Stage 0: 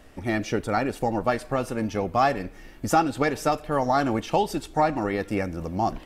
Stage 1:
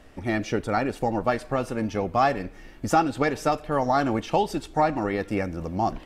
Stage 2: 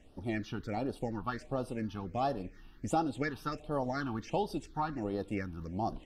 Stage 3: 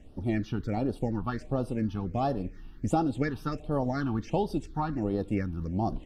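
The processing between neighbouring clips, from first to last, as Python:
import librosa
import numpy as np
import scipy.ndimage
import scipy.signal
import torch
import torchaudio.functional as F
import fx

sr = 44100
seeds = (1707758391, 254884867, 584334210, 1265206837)

y1 = fx.high_shelf(x, sr, hz=10000.0, db=-8.5)
y2 = fx.phaser_stages(y1, sr, stages=6, low_hz=530.0, high_hz=2200.0, hz=1.4, feedback_pct=15)
y2 = F.gain(torch.from_numpy(y2), -8.0).numpy()
y3 = fx.low_shelf(y2, sr, hz=420.0, db=9.5)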